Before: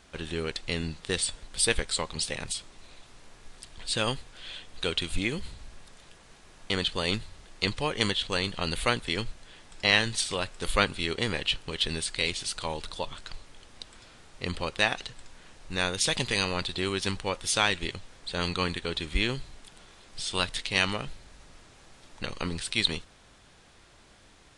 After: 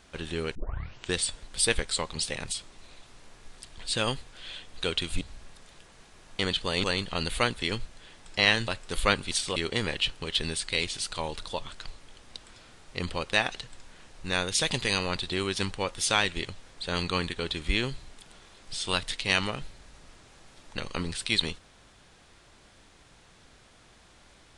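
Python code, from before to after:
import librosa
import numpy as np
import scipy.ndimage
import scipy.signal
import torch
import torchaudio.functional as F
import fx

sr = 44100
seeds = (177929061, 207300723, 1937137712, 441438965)

y = fx.edit(x, sr, fx.tape_start(start_s=0.55, length_s=0.59),
    fx.cut(start_s=5.21, length_s=0.31),
    fx.cut(start_s=7.15, length_s=1.15),
    fx.move(start_s=10.14, length_s=0.25, to_s=11.02), tone=tone)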